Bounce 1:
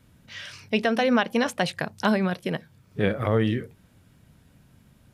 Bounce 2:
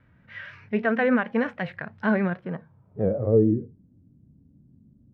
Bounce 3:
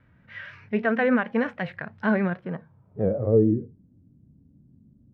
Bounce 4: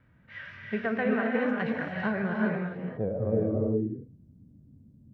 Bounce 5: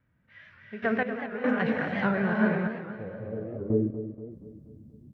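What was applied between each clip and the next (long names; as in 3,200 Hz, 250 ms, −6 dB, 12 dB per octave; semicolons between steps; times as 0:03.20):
harmonic and percussive parts rebalanced percussive −11 dB; low-pass filter sweep 1,800 Hz → 280 Hz, 0:02.27–0:03.69; pitch vibrato 6.4 Hz 49 cents
no processing that can be heard
downward compressor, threshold −23 dBFS, peak gain reduction 9.5 dB; reverb whose tail is shaped and stops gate 430 ms rising, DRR −1 dB; level −3 dB
gate pattern "....x..xxxxxx." 73 BPM −12 dB; repeating echo 239 ms, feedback 49%, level −10.5 dB; wow of a warped record 78 rpm, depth 160 cents; level +3 dB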